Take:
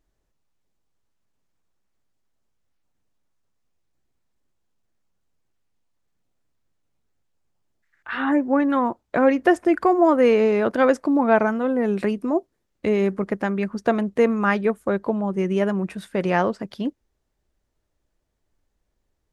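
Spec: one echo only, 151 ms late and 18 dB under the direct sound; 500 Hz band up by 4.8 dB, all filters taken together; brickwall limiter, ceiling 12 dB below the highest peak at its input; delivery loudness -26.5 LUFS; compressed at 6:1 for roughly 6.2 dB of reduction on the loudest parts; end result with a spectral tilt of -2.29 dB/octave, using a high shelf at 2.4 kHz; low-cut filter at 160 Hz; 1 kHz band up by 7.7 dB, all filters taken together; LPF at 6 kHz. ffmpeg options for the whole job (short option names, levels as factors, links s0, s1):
-af "highpass=160,lowpass=6000,equalizer=f=500:t=o:g=3.5,equalizer=f=1000:t=o:g=7.5,highshelf=f=2400:g=8.5,acompressor=threshold=0.224:ratio=6,alimiter=limit=0.211:level=0:latency=1,aecho=1:1:151:0.126,volume=0.75"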